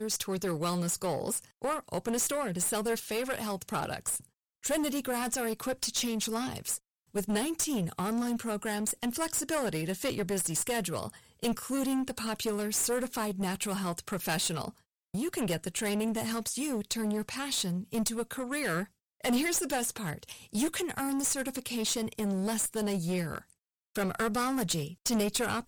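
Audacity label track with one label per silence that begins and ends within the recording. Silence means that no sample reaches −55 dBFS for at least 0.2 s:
4.270000	4.630000	silence
6.790000	7.140000	silence
14.810000	15.140000	silence
18.880000	19.200000	silence
23.530000	23.950000	silence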